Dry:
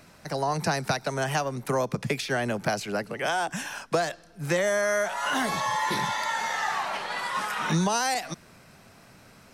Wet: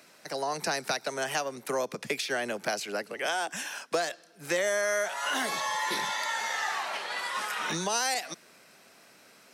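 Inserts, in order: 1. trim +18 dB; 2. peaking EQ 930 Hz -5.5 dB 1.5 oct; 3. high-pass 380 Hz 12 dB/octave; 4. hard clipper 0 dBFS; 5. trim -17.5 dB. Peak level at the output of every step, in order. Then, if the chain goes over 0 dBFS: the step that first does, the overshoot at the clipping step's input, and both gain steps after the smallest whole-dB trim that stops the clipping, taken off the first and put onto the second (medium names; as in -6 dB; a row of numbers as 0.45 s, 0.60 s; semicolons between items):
+4.5 dBFS, +4.0 dBFS, +3.0 dBFS, 0.0 dBFS, -17.5 dBFS; step 1, 3.0 dB; step 1 +15 dB, step 5 -14.5 dB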